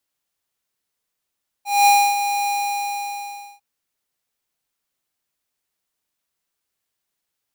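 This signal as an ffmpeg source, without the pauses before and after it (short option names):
-f lavfi -i "aevalsrc='0.251*(2*lt(mod(812*t,1),0.5)-1)':d=1.95:s=44100,afade=t=in:d=0.215,afade=t=out:st=0.215:d=0.283:silence=0.335,afade=t=out:st=0.83:d=1.12"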